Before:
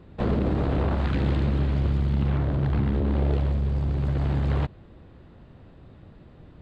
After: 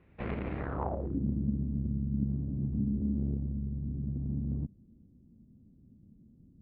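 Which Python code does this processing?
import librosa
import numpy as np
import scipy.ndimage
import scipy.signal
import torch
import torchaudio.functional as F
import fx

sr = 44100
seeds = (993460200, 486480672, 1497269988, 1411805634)

y = fx.cheby_harmonics(x, sr, harmonics=(3, 5), levels_db=(-13, -31), full_scale_db=-12.5)
y = fx.filter_sweep_lowpass(y, sr, from_hz=2300.0, to_hz=230.0, start_s=0.57, end_s=1.23, q=3.9)
y = F.gain(torch.from_numpy(y), -7.5).numpy()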